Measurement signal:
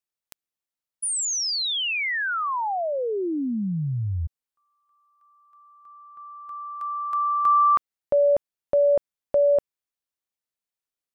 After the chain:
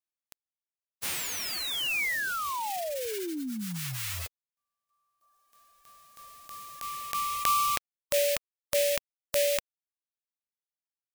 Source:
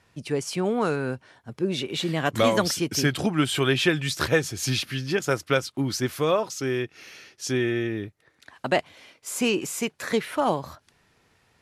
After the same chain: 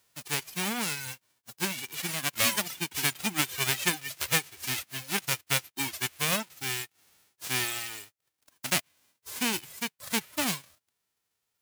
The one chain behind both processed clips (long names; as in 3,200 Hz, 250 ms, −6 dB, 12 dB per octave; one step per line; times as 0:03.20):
spectral envelope flattened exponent 0.1
dynamic equaliser 2,400 Hz, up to +6 dB, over −40 dBFS, Q 1.4
reverb reduction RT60 1.7 s
level −6 dB